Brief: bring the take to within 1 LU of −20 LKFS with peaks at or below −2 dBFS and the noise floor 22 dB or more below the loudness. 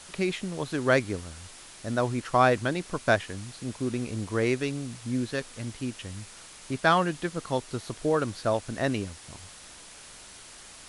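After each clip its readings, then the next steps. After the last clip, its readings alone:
background noise floor −48 dBFS; target noise floor −51 dBFS; integrated loudness −28.5 LKFS; sample peak −8.5 dBFS; target loudness −20.0 LKFS
→ broadband denoise 6 dB, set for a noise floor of −48 dBFS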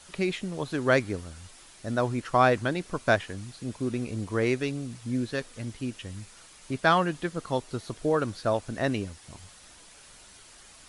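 background noise floor −52 dBFS; integrated loudness −28.5 LKFS; sample peak −8.5 dBFS; target loudness −20.0 LKFS
→ level +8.5 dB
brickwall limiter −2 dBFS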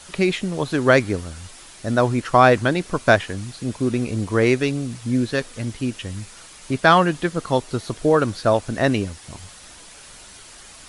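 integrated loudness −20.5 LKFS; sample peak −2.0 dBFS; background noise floor −44 dBFS

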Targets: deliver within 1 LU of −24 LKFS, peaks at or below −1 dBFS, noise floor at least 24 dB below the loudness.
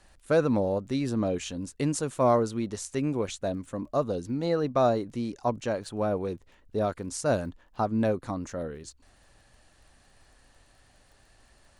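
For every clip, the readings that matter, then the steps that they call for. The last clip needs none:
crackle rate 23 per second; integrated loudness −29.0 LKFS; sample peak −11.5 dBFS; target loudness −24.0 LKFS
→ click removal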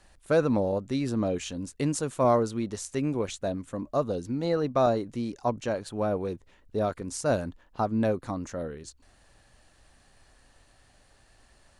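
crackle rate 0 per second; integrated loudness −29.0 LKFS; sample peak −11.5 dBFS; target loudness −24.0 LKFS
→ level +5 dB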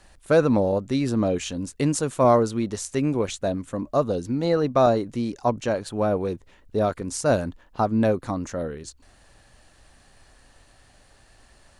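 integrated loudness −24.0 LKFS; sample peak −6.5 dBFS; background noise floor −56 dBFS

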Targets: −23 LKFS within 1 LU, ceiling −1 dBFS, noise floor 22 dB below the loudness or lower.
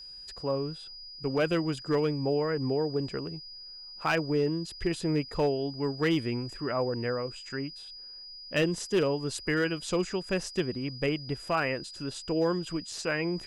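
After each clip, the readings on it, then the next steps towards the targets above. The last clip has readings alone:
share of clipped samples 0.5%; peaks flattened at −19.5 dBFS; interfering tone 4,900 Hz; level of the tone −43 dBFS; integrated loudness −30.5 LKFS; sample peak −19.5 dBFS; target loudness −23.0 LKFS
→ clipped peaks rebuilt −19.5 dBFS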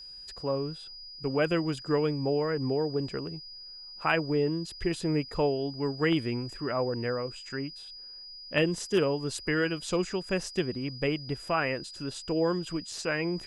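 share of clipped samples 0.0%; interfering tone 4,900 Hz; level of the tone −43 dBFS
→ notch filter 4,900 Hz, Q 30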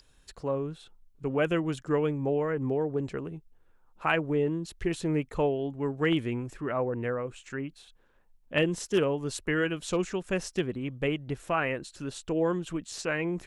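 interfering tone none found; integrated loudness −30.5 LKFS; sample peak −10.5 dBFS; target loudness −23.0 LKFS
→ level +7.5 dB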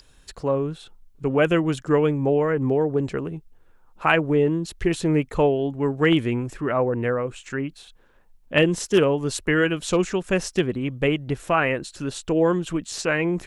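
integrated loudness −23.0 LKFS; sample peak −3.0 dBFS; background noise floor −55 dBFS

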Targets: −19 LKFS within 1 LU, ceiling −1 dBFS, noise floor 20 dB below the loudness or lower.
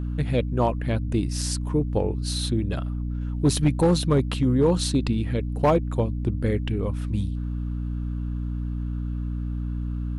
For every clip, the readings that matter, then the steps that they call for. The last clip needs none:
share of clipped samples 0.3%; peaks flattened at −12.5 dBFS; mains hum 60 Hz; hum harmonics up to 300 Hz; level of the hum −25 dBFS; integrated loudness −25.5 LKFS; sample peak −12.5 dBFS; target loudness −19.0 LKFS
→ clipped peaks rebuilt −12.5 dBFS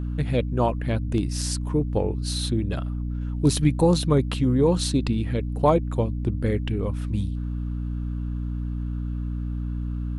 share of clipped samples 0.0%; mains hum 60 Hz; hum harmonics up to 300 Hz; level of the hum −25 dBFS
→ mains-hum notches 60/120/180/240/300 Hz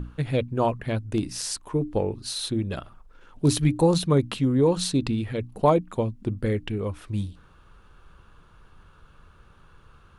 mains hum none found; integrated loudness −25.5 LKFS; sample peak −8.0 dBFS; target loudness −19.0 LKFS
→ level +6.5 dB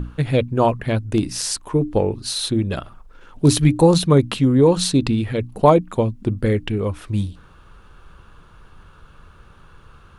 integrated loudness −19.0 LKFS; sample peak −1.5 dBFS; background noise floor −48 dBFS

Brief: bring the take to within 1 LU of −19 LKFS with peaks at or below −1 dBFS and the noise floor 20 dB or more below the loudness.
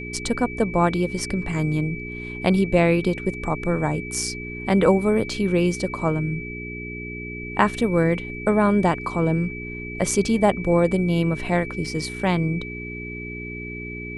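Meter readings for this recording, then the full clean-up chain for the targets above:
mains hum 60 Hz; hum harmonics up to 420 Hz; level of the hum −33 dBFS; interfering tone 2,300 Hz; level of the tone −34 dBFS; integrated loudness −23.0 LKFS; sample peak −3.5 dBFS; target loudness −19.0 LKFS
→ hum removal 60 Hz, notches 7
notch filter 2,300 Hz, Q 30
level +4 dB
brickwall limiter −1 dBFS

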